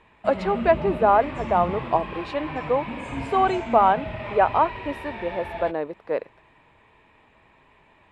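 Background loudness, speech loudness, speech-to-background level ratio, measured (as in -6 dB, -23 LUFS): -33.0 LUFS, -23.5 LUFS, 9.5 dB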